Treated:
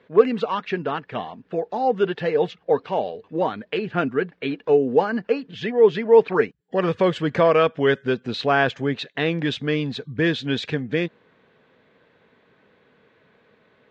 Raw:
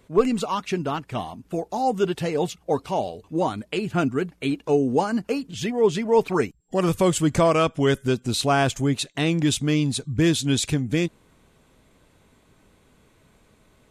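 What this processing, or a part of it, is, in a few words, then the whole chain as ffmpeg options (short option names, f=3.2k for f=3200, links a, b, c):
kitchen radio: -af "highpass=170,equalizer=f=310:t=q:w=4:g=-4,equalizer=f=470:t=q:w=4:g=7,equalizer=f=1.7k:t=q:w=4:g=9,lowpass=f=3.9k:w=0.5412,lowpass=f=3.9k:w=1.3066"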